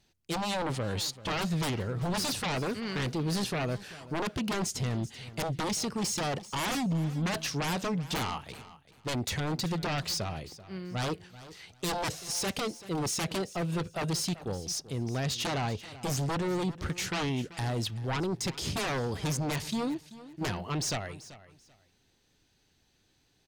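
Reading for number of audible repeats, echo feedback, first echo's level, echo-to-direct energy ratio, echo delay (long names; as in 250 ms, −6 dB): 2, 22%, −17.0 dB, −17.0 dB, 386 ms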